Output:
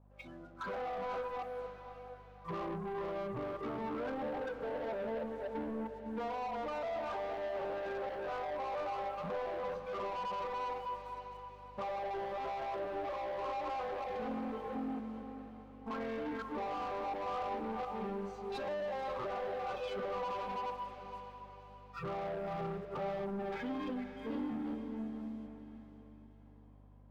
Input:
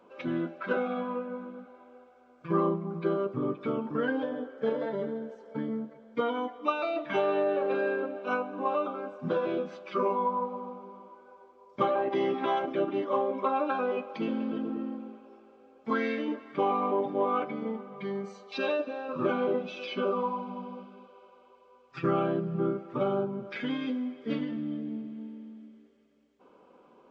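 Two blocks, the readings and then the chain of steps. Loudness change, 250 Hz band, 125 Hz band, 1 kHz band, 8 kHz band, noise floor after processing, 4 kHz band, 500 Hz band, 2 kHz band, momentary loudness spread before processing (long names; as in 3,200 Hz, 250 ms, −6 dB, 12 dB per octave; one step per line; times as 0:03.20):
−8.5 dB, −10.0 dB, −9.5 dB, −5.5 dB, can't be measured, −55 dBFS, −7.5 dB, −8.5 dB, −8.5 dB, 12 LU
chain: delay that plays each chunk backwards 238 ms, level −6 dB
noise reduction from a noise print of the clip's start 23 dB
drawn EQ curve 440 Hz 0 dB, 720 Hz +12 dB, 2,200 Hz −8 dB
brickwall limiter −29 dBFS, peak gain reduction 20.5 dB
mains hum 50 Hz, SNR 25 dB
leveller curve on the samples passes 2
on a send: feedback delay with all-pass diffusion 542 ms, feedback 45%, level −9.5 dB
on the sum: level −6 dB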